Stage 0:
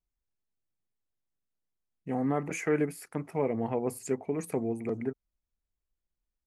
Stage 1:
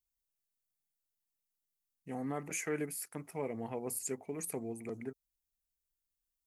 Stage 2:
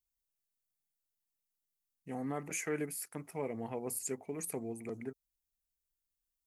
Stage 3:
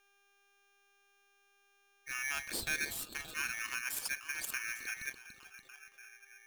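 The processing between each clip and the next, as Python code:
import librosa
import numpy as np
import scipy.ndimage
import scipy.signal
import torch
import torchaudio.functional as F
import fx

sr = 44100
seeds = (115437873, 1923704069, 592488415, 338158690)

y1 = librosa.effects.preemphasis(x, coef=0.8, zi=[0.0])
y1 = y1 * 10.0 ** (4.5 / 20.0)
y2 = y1
y3 = fx.echo_stepped(y2, sr, ms=288, hz=2600.0, octaves=-0.7, feedback_pct=70, wet_db=-4.0)
y3 = fx.dmg_buzz(y3, sr, base_hz=400.0, harmonics=7, level_db=-71.0, tilt_db=-5, odd_only=False)
y3 = y3 * np.sign(np.sin(2.0 * np.pi * 2000.0 * np.arange(len(y3)) / sr))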